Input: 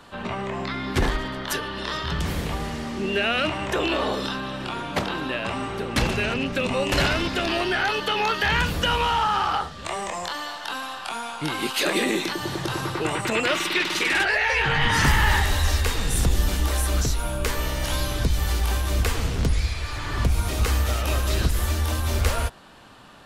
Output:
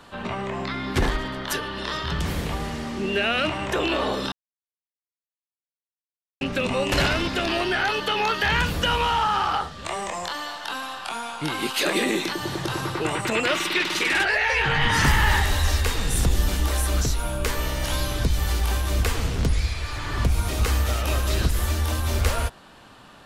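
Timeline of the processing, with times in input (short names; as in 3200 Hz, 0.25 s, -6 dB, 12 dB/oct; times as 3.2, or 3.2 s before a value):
4.32–6.41 mute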